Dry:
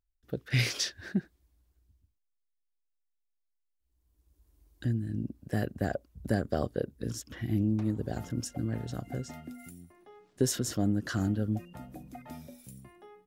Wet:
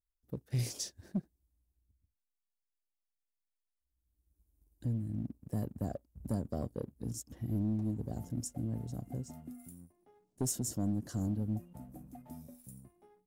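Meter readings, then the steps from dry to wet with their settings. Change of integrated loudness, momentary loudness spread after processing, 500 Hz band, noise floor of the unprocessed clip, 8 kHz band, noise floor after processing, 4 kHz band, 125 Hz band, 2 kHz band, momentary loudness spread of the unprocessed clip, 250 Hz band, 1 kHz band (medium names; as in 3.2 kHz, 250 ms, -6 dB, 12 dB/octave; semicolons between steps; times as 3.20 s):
-5.5 dB, 16 LU, -9.5 dB, -79 dBFS, -3.0 dB, under -85 dBFS, -11.5 dB, -4.0 dB, under -20 dB, 18 LU, -5.0 dB, -9.0 dB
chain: FFT filter 250 Hz 0 dB, 380 Hz -5 dB, 870 Hz -5 dB, 1.4 kHz -19 dB, 3.4 kHz -15 dB, 9.3 kHz +1 dB; hard clipper -20.5 dBFS, distortion -27 dB; dynamic bell 7.4 kHz, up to +5 dB, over -55 dBFS, Q 1.4; waveshaping leveller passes 1; trim -6.5 dB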